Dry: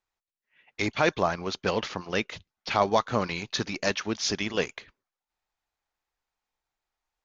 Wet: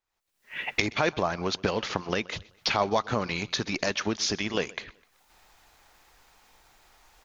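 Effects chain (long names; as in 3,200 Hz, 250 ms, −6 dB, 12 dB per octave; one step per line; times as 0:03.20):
camcorder AGC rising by 58 dB per second
repeating echo 127 ms, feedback 42%, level −23 dB
level −2.5 dB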